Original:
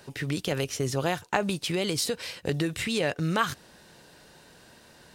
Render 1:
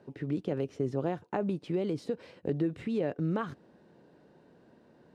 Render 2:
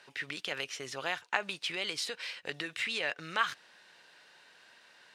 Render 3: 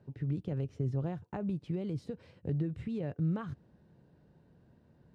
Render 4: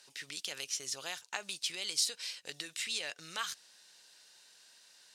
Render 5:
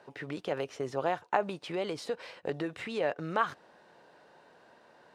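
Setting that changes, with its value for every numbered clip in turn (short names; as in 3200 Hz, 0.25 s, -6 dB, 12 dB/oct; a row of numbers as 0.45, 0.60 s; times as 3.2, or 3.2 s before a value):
band-pass, frequency: 290, 2200, 110, 5900, 770 Hz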